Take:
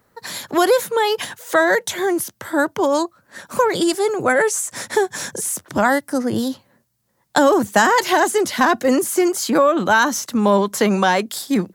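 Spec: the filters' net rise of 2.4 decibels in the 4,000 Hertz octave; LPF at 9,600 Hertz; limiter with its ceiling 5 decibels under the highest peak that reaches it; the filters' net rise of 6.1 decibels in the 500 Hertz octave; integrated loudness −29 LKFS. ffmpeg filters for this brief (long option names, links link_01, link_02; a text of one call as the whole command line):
ffmpeg -i in.wav -af "lowpass=9600,equalizer=frequency=500:width_type=o:gain=7.5,equalizer=frequency=4000:width_type=o:gain=3,volume=-13dB,alimiter=limit=-17.5dB:level=0:latency=1" out.wav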